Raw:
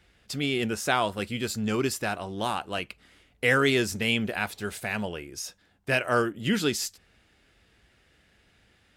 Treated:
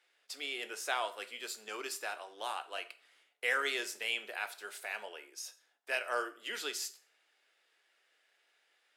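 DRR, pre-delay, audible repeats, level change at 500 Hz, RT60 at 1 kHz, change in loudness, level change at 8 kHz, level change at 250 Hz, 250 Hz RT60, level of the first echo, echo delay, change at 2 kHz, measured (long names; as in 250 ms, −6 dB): 10.0 dB, 6 ms, no echo audible, −13.5 dB, 0.40 s, −10.0 dB, −7.5 dB, −25.0 dB, 0.45 s, no echo audible, no echo audible, −8.0 dB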